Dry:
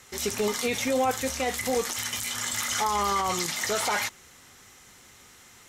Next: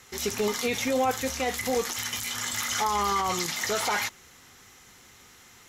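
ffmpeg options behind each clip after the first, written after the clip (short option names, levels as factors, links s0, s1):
-af "equalizer=f=8600:w=5.8:g=-9,bandreject=f=590:w=12"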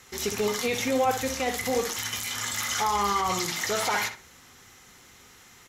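-filter_complex "[0:a]asplit=2[s0][s1];[s1]adelay=64,lowpass=f=2300:p=1,volume=0.447,asplit=2[s2][s3];[s3]adelay=64,lowpass=f=2300:p=1,volume=0.28,asplit=2[s4][s5];[s5]adelay=64,lowpass=f=2300:p=1,volume=0.28[s6];[s0][s2][s4][s6]amix=inputs=4:normalize=0"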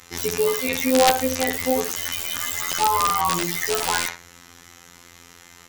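-af "afftfilt=real='hypot(re,im)*cos(PI*b)':imag='0':win_size=2048:overlap=0.75,aeval=exprs='(mod(4.73*val(0)+1,2)-1)/4.73':c=same,volume=2.66"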